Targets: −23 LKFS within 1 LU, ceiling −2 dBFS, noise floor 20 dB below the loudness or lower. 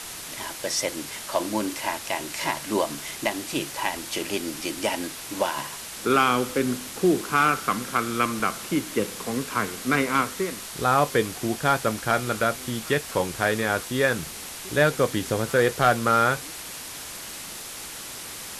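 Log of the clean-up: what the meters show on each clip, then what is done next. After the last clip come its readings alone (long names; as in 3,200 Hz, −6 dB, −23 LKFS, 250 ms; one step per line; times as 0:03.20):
number of dropouts 1; longest dropout 1.3 ms; background noise floor −38 dBFS; target noise floor −46 dBFS; integrated loudness −25.5 LKFS; sample peak −8.5 dBFS; target loudness −23.0 LKFS
→ repair the gap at 0:08.40, 1.3 ms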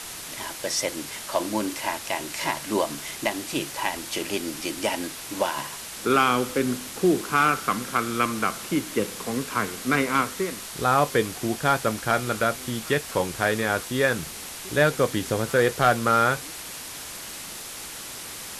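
number of dropouts 0; background noise floor −38 dBFS; target noise floor −46 dBFS
→ broadband denoise 8 dB, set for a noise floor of −38 dBFS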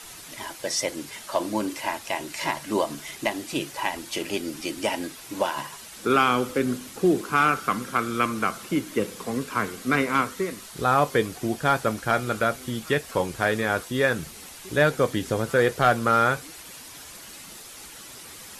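background noise floor −43 dBFS; target noise floor −46 dBFS
→ broadband denoise 6 dB, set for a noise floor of −43 dBFS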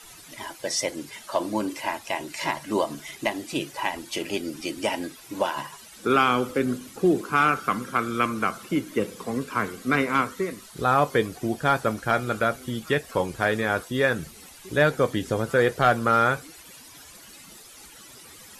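background noise floor −47 dBFS; integrated loudness −25.5 LKFS; sample peak −8.5 dBFS; target loudness −23.0 LKFS
→ level +2.5 dB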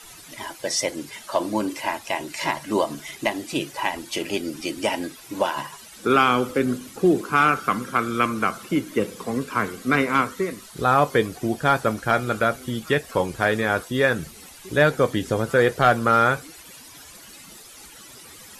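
integrated loudness −23.0 LKFS; sample peak −6.0 dBFS; background noise floor −45 dBFS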